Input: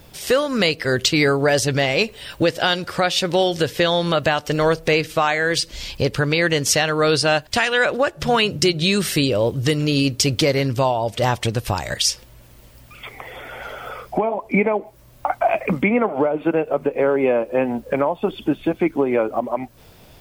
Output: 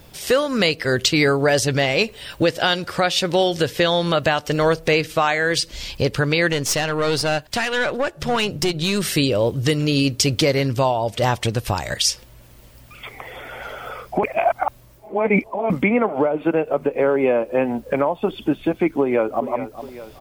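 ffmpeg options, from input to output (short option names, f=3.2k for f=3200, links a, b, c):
-filter_complex "[0:a]asettb=1/sr,asplit=3[a][b][c];[a]atrim=end=6.524[d];[b]atrim=start=6.52:end=9.03,asetpts=PTS-STARTPTS,afade=t=in:d=0.004:c=qsin,afade=t=out:st=2.506:d=0.004:c=qsin,aeval=exprs='(tanh(5.01*val(0)+0.45)-tanh(0.45))/5.01':c=same[e];[c]atrim=start=9.026[f];[d][e]acrossfade=d=0.004:c1=hsin:c2=qsin[g];[g][f]acrossfade=d=0.004:c1=qsin:c2=hsin,asplit=2[h][i];[i]afade=t=in:st=19:d=0.01,afade=t=out:st=19.48:d=0.01,aecho=0:1:410|820|1230|1640|2050|2460:0.237137|0.130426|0.0717341|0.0394537|0.0216996|0.0119348[j];[h][j]amix=inputs=2:normalize=0,asplit=3[k][l][m];[k]atrim=end=14.232[n];[l]atrim=start=14.228:end=15.702,asetpts=PTS-STARTPTS,areverse[o];[m]atrim=start=15.698[p];[n][o]acrossfade=d=0.004:c1=hsin:c2=hsin[q];[q][p]acrossfade=d=0.004:c1=hsin:c2=hsin"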